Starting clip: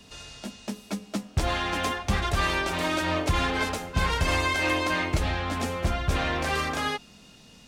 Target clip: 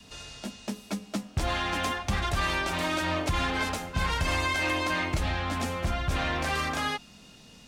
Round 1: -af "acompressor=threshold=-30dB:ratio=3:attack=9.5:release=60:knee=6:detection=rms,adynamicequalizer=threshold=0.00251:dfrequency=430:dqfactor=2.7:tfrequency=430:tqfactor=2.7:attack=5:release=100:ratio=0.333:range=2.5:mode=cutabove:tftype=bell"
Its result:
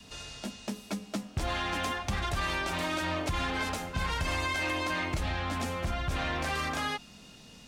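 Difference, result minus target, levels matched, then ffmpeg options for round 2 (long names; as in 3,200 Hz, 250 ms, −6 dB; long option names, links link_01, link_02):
downward compressor: peak gain reduction +4.5 dB
-af "acompressor=threshold=-23.5dB:ratio=3:attack=9.5:release=60:knee=6:detection=rms,adynamicequalizer=threshold=0.00251:dfrequency=430:dqfactor=2.7:tfrequency=430:tqfactor=2.7:attack=5:release=100:ratio=0.333:range=2.5:mode=cutabove:tftype=bell"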